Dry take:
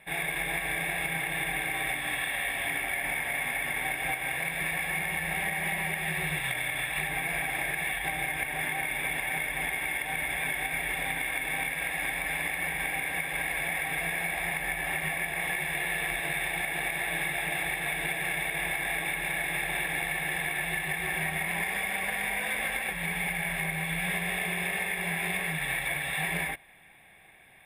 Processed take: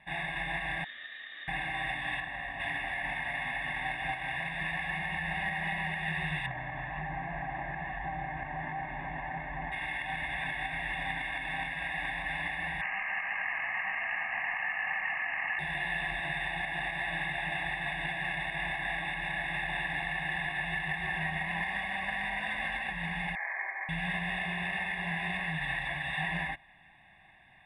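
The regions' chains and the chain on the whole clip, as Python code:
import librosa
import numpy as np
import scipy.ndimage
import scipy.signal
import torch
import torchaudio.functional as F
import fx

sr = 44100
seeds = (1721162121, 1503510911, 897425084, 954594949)

y = fx.chain(x, sr, fx.ladder_highpass(hz=240.0, resonance_pct=40),
    fx.high_shelf(hz=2800.0, db=-9.0),
    fx.freq_invert(carrier_hz=4000), at=(0.84, 1.48))
y = fx.chain(y, sr, fx.lowpass(hz=7500.0, slope=12),
    fx.peak_eq(hz=4400.0, db=-9.5, octaves=2.7), at=(2.2, 2.6))
y = fx.chain(y, sr, fx.lowpass(hz=1200.0, slope=12),
    fx.env_flatten(amount_pct=50), at=(6.46, 9.72))
y = fx.chain(y, sr, fx.highpass(hz=950.0, slope=12),
    fx.resample_bad(factor=8, down='none', up='filtered'),
    fx.env_flatten(amount_pct=70), at=(12.81, 15.59))
y = fx.chain(y, sr, fx.median_filter(points=15),
    fx.brickwall_bandpass(low_hz=320.0, high_hz=2500.0),
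    fx.tilt_shelf(db=-9.0, hz=920.0), at=(23.35, 23.89))
y = scipy.signal.sosfilt(scipy.signal.butter(2, 3600.0, 'lowpass', fs=sr, output='sos'), y)
y = y + 0.82 * np.pad(y, (int(1.1 * sr / 1000.0), 0))[:len(y)]
y = F.gain(torch.from_numpy(y), -4.5).numpy()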